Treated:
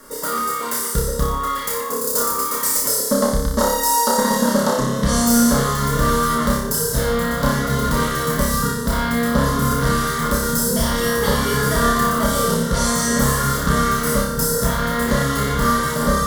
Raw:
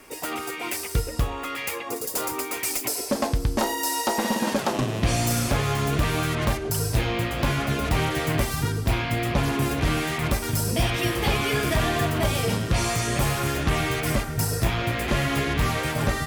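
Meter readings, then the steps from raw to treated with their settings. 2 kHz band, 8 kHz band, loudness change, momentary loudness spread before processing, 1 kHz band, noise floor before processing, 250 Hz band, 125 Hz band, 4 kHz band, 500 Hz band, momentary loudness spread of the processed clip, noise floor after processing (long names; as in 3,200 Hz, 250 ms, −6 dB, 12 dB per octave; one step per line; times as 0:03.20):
+4.0 dB, +9.0 dB, +6.5 dB, 5 LU, +8.5 dB, −33 dBFS, +7.5 dB, +2.0 dB, +3.5 dB, +7.0 dB, 5 LU, −24 dBFS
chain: phaser with its sweep stopped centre 500 Hz, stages 8
flutter between parallel walls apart 5.1 metres, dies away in 0.69 s
level +6.5 dB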